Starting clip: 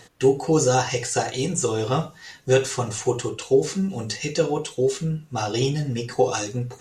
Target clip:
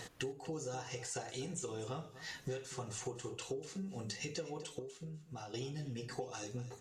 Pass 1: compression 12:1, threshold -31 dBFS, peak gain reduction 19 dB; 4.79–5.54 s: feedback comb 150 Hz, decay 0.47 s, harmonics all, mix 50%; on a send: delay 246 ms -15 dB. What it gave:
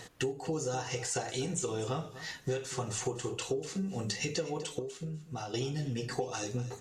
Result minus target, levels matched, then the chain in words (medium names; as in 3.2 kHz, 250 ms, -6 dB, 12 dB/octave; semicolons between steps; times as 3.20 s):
compression: peak gain reduction -8 dB
compression 12:1, threshold -39.5 dBFS, peak gain reduction 26.5 dB; 4.79–5.54 s: feedback comb 150 Hz, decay 0.47 s, harmonics all, mix 50%; on a send: delay 246 ms -15 dB